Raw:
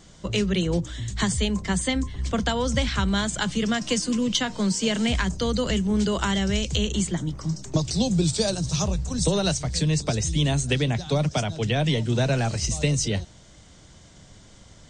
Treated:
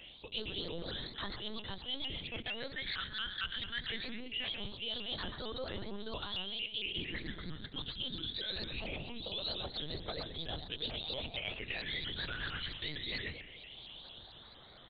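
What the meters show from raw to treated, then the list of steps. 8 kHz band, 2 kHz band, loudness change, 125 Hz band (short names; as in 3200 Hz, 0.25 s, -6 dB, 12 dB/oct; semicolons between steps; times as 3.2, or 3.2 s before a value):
under -40 dB, -10.0 dB, -15.0 dB, -24.0 dB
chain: octaver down 2 oct, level +1 dB; limiter -15.5 dBFS, peak gain reduction 7.5 dB; on a send: frequency-shifting echo 0.129 s, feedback 31%, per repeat +34 Hz, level -8.5 dB; on the sum: phaser stages 12, 0.22 Hz, lowest notch 760–2600 Hz; differentiator; LPC vocoder at 8 kHz pitch kept; reverse; compressor 6:1, threshold -55 dBFS, peak gain reduction 18 dB; reverse; shaped vibrato saw up 4.4 Hz, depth 160 cents; gain +18 dB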